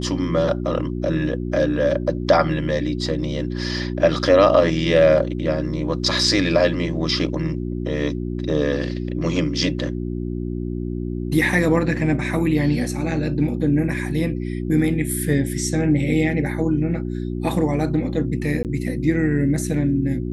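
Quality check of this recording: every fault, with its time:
hum 60 Hz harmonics 6 -26 dBFS
18.63–18.65 s: dropout 18 ms

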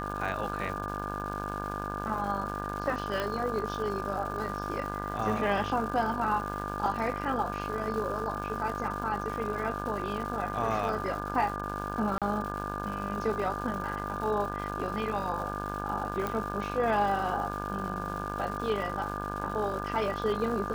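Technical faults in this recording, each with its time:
buzz 50 Hz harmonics 34 -37 dBFS
crackle 360 per s -38 dBFS
whine 1.2 kHz -37 dBFS
3.20 s: pop -18 dBFS
12.18–12.22 s: dropout 37 ms
16.27 s: pop -18 dBFS

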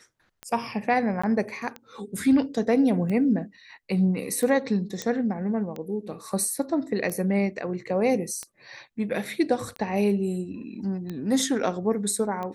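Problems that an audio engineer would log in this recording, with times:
tick 45 rpm -21 dBFS
1.22–1.24 s: dropout 15 ms
5.02 s: pop -16 dBFS

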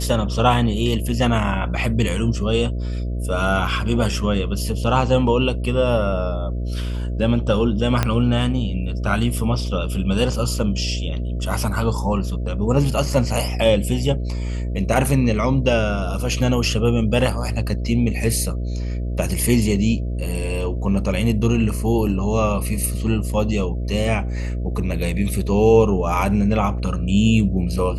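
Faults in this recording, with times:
buzz 60 Hz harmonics 11 -24 dBFS
8.03 s: pop -4 dBFS

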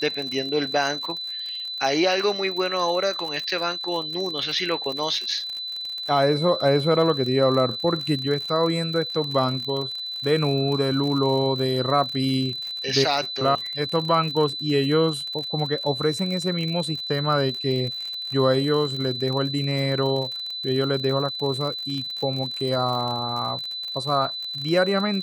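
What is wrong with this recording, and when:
crackle 54 per s -29 dBFS
whine 4 kHz -29 dBFS

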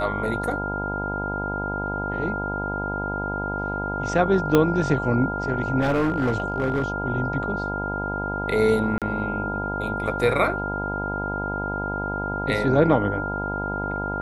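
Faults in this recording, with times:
buzz 50 Hz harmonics 20 -30 dBFS
whine 1.4 kHz -28 dBFS
4.55 s: pop -5 dBFS
5.80–6.92 s: clipped -17.5 dBFS
8.98–9.02 s: dropout 37 ms

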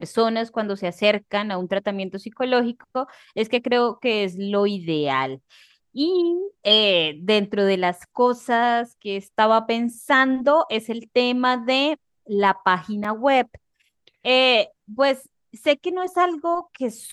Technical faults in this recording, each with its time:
13.04–13.05 s: dropout 5.1 ms

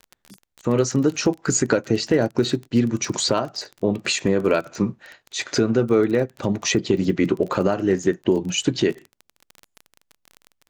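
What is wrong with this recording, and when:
crackle 24 per s -28 dBFS

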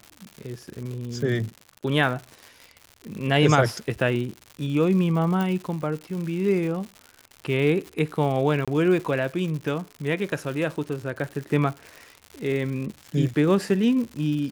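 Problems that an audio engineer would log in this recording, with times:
crackle 170 per s -32 dBFS
5.41 s: pop
8.65–8.68 s: dropout 26 ms

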